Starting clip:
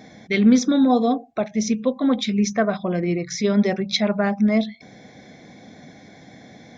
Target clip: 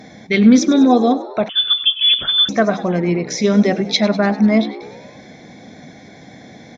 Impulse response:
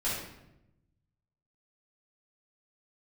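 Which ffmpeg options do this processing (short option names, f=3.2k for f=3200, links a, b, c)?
-filter_complex "[0:a]asplit=7[a][b][c][d][e][f][g];[b]adelay=99,afreqshift=67,volume=-17dB[h];[c]adelay=198,afreqshift=134,volume=-21dB[i];[d]adelay=297,afreqshift=201,volume=-25dB[j];[e]adelay=396,afreqshift=268,volume=-29dB[k];[f]adelay=495,afreqshift=335,volume=-33.1dB[l];[g]adelay=594,afreqshift=402,volume=-37.1dB[m];[a][h][i][j][k][l][m]amix=inputs=7:normalize=0,asettb=1/sr,asplit=3[n][o][p];[n]atrim=end=1.494[q];[o]atrim=start=1.49:end=2.49,asetpts=PTS-STARTPTS,afade=t=in:d=0.004:c=qsin,afade=t=out:st=0.996:d=0.004:c=qsin,lowpass=f=3.1k:t=q:w=0.5098,lowpass=f=3.1k:t=q:w=0.6013,lowpass=f=3.1k:t=q:w=0.9,lowpass=f=3.1k:t=q:w=2.563,afreqshift=-3700[r];[p]atrim=start=2.486[s];[q][r]acrossfade=d=0.004:c1=hsin:c2=qsin[t];[t][s]acrossfade=d=0.004:c1=qsin:c2=hsin,volume=5dB" -ar 48000 -c:a libopus -b:a 128k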